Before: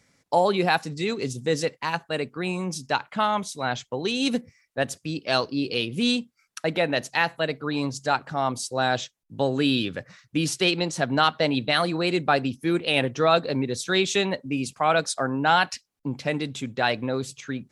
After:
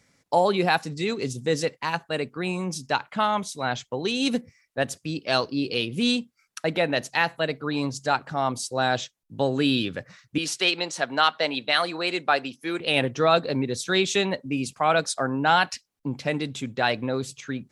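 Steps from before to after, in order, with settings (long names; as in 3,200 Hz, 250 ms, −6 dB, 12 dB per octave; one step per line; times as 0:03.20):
0:10.38–0:12.80: meter weighting curve A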